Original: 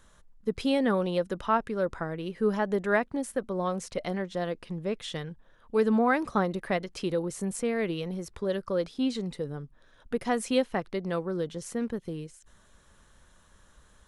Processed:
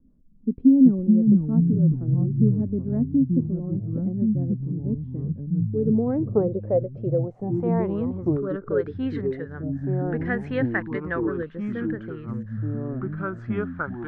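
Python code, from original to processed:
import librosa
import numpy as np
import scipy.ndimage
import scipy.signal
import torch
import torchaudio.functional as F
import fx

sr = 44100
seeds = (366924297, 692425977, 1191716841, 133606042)

y = fx.rotary_switch(x, sr, hz=6.3, then_hz=0.65, switch_at_s=5.11)
y = fx.filter_sweep_lowpass(y, sr, from_hz=260.0, to_hz=1700.0, start_s=5.38, end_s=8.98, q=6.5)
y = fx.echo_pitch(y, sr, ms=258, semitones=-4, count=3, db_per_echo=-3.0)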